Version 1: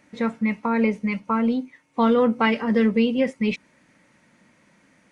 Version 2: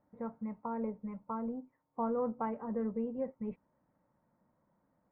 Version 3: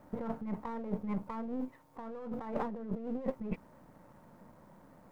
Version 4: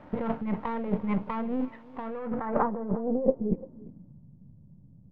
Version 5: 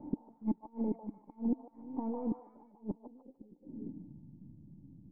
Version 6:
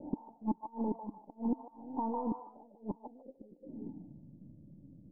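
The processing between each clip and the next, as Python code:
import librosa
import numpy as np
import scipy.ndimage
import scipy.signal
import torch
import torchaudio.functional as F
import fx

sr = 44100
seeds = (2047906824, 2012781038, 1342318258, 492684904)

y1 = scipy.signal.sosfilt(scipy.signal.butter(4, 1000.0, 'lowpass', fs=sr, output='sos'), x)
y1 = fx.peak_eq(y1, sr, hz=280.0, db=-9.5, octaves=2.2)
y1 = F.gain(torch.from_numpy(y1), -8.0).numpy()
y2 = np.where(y1 < 0.0, 10.0 ** (-7.0 / 20.0) * y1, y1)
y2 = fx.over_compress(y2, sr, threshold_db=-49.0, ratio=-1.0)
y2 = F.gain(torch.from_numpy(y2), 11.0).numpy()
y3 = fx.filter_sweep_lowpass(y2, sr, from_hz=2900.0, to_hz=130.0, start_s=2.03, end_s=4.29, q=1.9)
y3 = y3 + 10.0 ** (-20.5 / 20.0) * np.pad(y3, (int(345 * sr / 1000.0), 0))[:len(y3)]
y3 = F.gain(torch.from_numpy(y3), 7.5).numpy()
y4 = fx.gate_flip(y3, sr, shuts_db=-22.0, range_db=-32)
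y4 = fx.formant_cascade(y4, sr, vowel='u')
y4 = fx.echo_stepped(y4, sr, ms=149, hz=870.0, octaves=0.7, feedback_pct=70, wet_db=-2.5)
y4 = F.gain(torch.from_numpy(y4), 10.5).numpy()
y5 = fx.envelope_lowpass(y4, sr, base_hz=500.0, top_hz=1000.0, q=4.5, full_db=-37.0, direction='up')
y5 = F.gain(torch.from_numpy(y5), -1.5).numpy()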